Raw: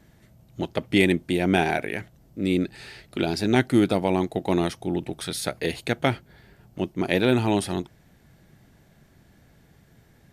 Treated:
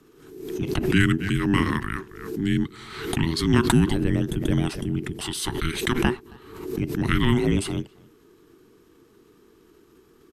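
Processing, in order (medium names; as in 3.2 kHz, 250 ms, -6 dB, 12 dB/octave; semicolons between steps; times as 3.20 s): speakerphone echo 270 ms, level -23 dB; frequency shift -490 Hz; swell ahead of each attack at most 62 dB/s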